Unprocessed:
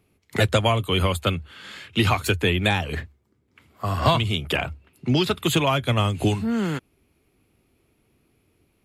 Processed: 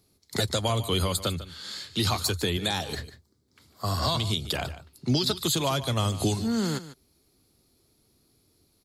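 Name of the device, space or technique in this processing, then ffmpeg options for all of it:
over-bright horn tweeter: -filter_complex "[0:a]asettb=1/sr,asplit=3[link_01][link_02][link_03];[link_01]atrim=end=2.574[link_04];[link_02]atrim=start=2.57:end=2.99,asetpts=PTS-STARTPTS,afade=type=in:duration=0.004:curve=qsin,afade=type=out:start_time=0.416:duration=0.004:curve=qsin,highpass=frequency=180:poles=1[link_05];[link_03]atrim=start=2.986[link_06];[link_04][link_05]acrossfade=duration=0.004:curve1=hsin:curve2=qsin[link_07];[link_07][link_06]acrossfade=duration=0.004:curve1=qsin:curve2=hsin,highshelf=frequency=3400:width_type=q:width=3:gain=8.5,alimiter=limit=-12dB:level=0:latency=1:release=109,aecho=1:1:148:0.188,volume=-3dB"

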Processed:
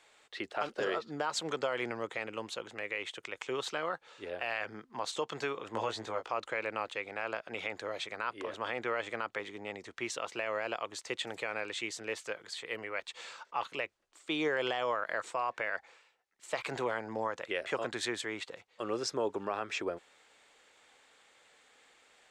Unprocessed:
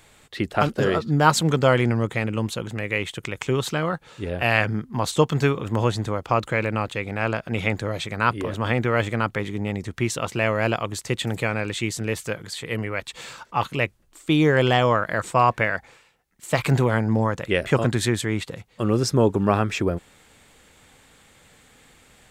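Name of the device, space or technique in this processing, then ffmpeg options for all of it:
DJ mixer with the lows and highs turned down: -filter_complex "[0:a]asettb=1/sr,asplit=3[link_01][link_02][link_03];[link_01]atrim=end=5.724[link_04];[link_02]atrim=start=5.72:end=6.32,asetpts=PTS-STARTPTS,afade=type=in:duration=0.004:curve=qsin,afade=type=out:start_time=0.596:duration=0.004:curve=qsin,asplit=2[link_05][link_06];[link_06]adelay=18,volume=-4dB[link_07];[link_05][link_07]amix=inputs=2:normalize=0,atrim=end_sample=26460[link_08];[link_03]atrim=start=6.316[link_09];[link_04][link_08]acrossfade=duration=0.004:curve1=hsin:curve2=qsin[link_10];[link_10][link_09]acrossfade=duration=0.004:curve1=qsin:curve2=hsin,acrossover=split=360 8000:gain=0.0708 1 0.112[link_11][link_12][link_13];[link_11][link_12][link_13]amix=inputs=3:normalize=0,alimiter=limit=-14.5dB:level=0:latency=1:release=94,volume=-7.5dB"

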